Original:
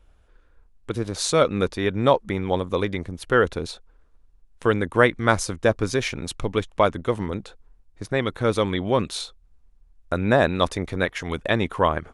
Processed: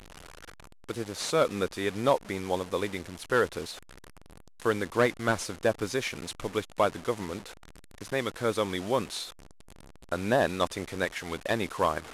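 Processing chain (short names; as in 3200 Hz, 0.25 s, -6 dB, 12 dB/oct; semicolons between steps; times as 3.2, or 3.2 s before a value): delta modulation 64 kbps, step -31.5 dBFS; low shelf 160 Hz -10 dB; gain -5 dB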